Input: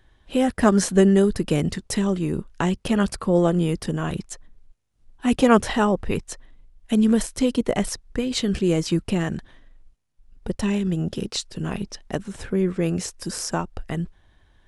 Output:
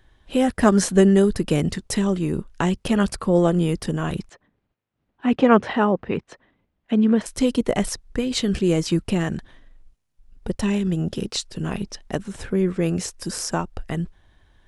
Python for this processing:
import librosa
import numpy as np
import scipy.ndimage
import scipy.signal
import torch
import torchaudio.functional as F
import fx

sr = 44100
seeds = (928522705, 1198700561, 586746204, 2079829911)

y = fx.bandpass_edges(x, sr, low_hz=140.0, high_hz=2600.0, at=(4.29, 7.26))
y = F.gain(torch.from_numpy(y), 1.0).numpy()